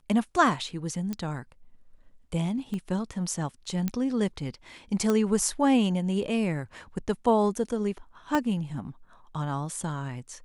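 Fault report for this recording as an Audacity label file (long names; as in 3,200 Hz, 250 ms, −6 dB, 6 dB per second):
1.130000	1.130000	click −19 dBFS
2.740000	2.740000	click −24 dBFS
3.880000	3.880000	click −15 dBFS
5.100000	5.100000	click −14 dBFS
8.350000	8.350000	click −13 dBFS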